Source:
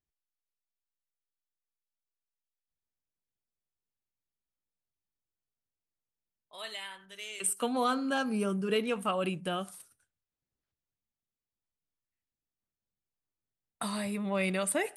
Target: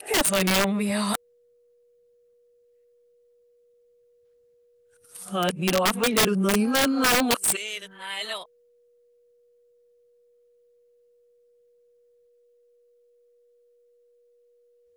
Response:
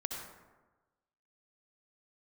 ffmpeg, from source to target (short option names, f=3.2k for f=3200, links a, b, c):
-af "areverse,aeval=exprs='(mod(14.1*val(0)+1,2)-1)/14.1':c=same,aeval=exprs='val(0)+0.000398*sin(2*PI*480*n/s)':c=same,volume=9dB"